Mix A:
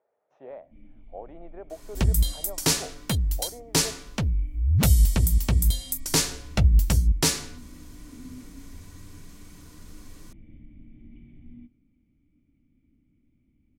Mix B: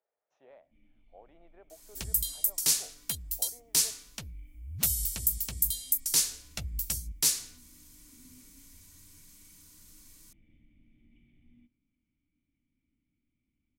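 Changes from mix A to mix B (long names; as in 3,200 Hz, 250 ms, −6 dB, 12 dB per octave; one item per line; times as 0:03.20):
speech +3.5 dB
first sound +4.5 dB
master: add first-order pre-emphasis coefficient 0.9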